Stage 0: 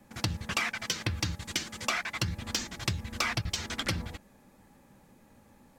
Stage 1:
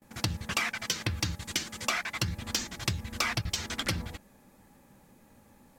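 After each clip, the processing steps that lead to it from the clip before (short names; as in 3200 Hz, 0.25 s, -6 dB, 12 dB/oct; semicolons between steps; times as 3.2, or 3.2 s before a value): gate with hold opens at -51 dBFS; high shelf 9100 Hz +5.5 dB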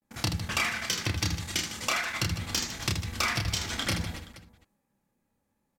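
gate with hold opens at -46 dBFS; reverse bouncing-ball echo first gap 30 ms, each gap 1.6×, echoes 5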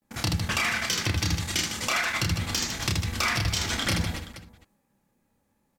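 limiter -21.5 dBFS, peak gain reduction 6 dB; gain +5.5 dB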